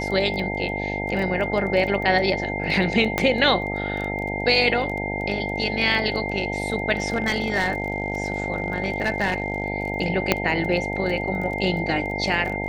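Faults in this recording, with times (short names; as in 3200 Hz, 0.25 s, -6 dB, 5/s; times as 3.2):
buzz 50 Hz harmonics 18 -29 dBFS
crackle 12/s -29 dBFS
tone 2100 Hz -29 dBFS
3.18 pop -6 dBFS
7.12–9.66 clipped -16.5 dBFS
10.32 pop -2 dBFS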